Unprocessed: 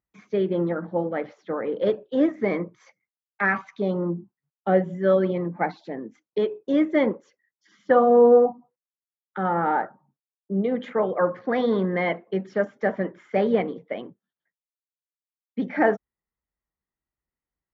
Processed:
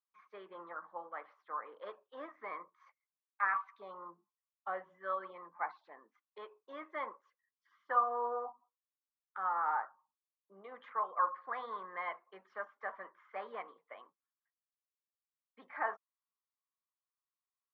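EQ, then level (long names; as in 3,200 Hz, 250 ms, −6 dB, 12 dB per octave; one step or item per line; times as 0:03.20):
resonant band-pass 1,100 Hz, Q 7
high-frequency loss of the air 120 metres
spectral tilt +4.5 dB per octave
+1.5 dB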